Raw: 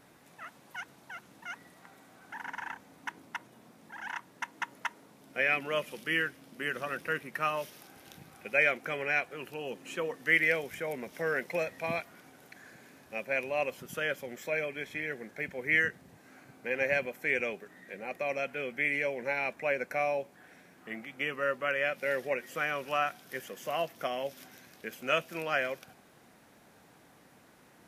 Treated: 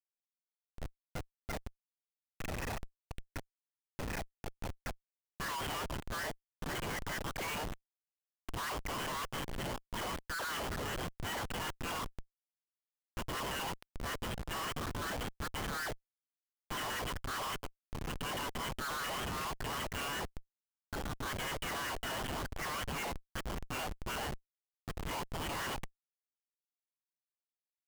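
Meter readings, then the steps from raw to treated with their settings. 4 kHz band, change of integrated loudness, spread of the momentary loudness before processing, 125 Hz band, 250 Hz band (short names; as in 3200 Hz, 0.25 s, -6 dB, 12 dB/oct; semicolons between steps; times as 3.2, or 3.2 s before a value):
+2.0 dB, -7.0 dB, 17 LU, +5.0 dB, -1.5 dB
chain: half-waves squared off; inverted band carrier 3100 Hz; in parallel at +0.5 dB: compressor 20:1, threshold -34 dBFS, peak gain reduction 17.5 dB; on the sum: frequency shift +370 Hz; LFO band-pass saw up 5.3 Hz 600–1800 Hz; dispersion lows, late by 63 ms, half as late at 750 Hz; transient shaper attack -11 dB, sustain +6 dB; Schmitt trigger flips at -39 dBFS; gain +1.5 dB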